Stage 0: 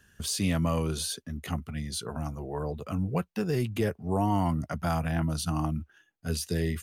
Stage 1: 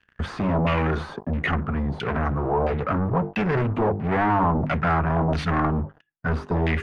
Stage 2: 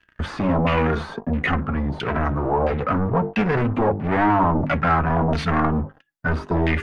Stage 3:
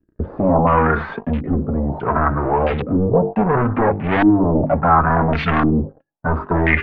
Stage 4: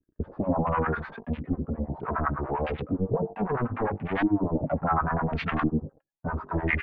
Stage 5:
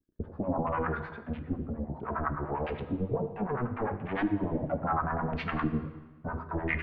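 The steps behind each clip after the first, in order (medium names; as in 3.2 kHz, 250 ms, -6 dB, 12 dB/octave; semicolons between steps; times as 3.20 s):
hum notches 50/100/150/200/250/300/350/400/450 Hz; waveshaping leveller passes 5; LFO low-pass saw down 1.5 Hz 710–2600 Hz; trim -3.5 dB
flange 0.46 Hz, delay 3 ms, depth 1.5 ms, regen +61%; trim +7 dB
LFO low-pass saw up 0.71 Hz 290–3800 Hz; trim +2.5 dB
harmonic tremolo 9.9 Hz, depth 100%, crossover 730 Hz; trim -6.5 dB
plate-style reverb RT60 1.3 s, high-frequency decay 0.9×, DRR 9.5 dB; trim -4.5 dB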